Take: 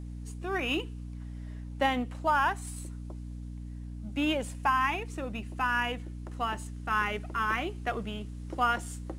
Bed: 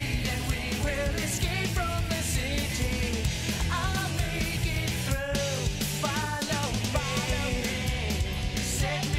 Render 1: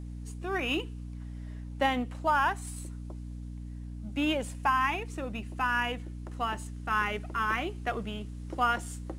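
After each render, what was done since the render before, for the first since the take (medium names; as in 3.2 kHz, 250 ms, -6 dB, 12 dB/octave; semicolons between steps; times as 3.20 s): no audible change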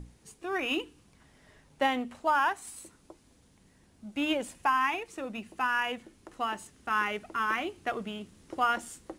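hum notches 60/120/180/240/300 Hz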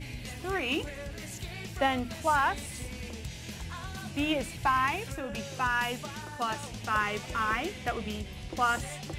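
add bed -11.5 dB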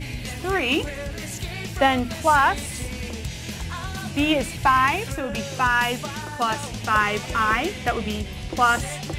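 trim +8.5 dB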